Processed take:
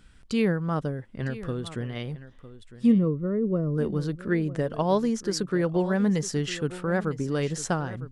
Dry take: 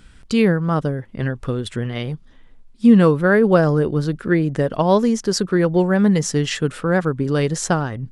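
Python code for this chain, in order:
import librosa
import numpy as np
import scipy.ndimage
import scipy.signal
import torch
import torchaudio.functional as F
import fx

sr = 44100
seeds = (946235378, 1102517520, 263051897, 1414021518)

p1 = fx.moving_average(x, sr, points=55, at=(2.91, 3.77), fade=0.02)
p2 = p1 + fx.echo_single(p1, sr, ms=955, db=-15.5, dry=0)
y = p2 * 10.0 ** (-8.0 / 20.0)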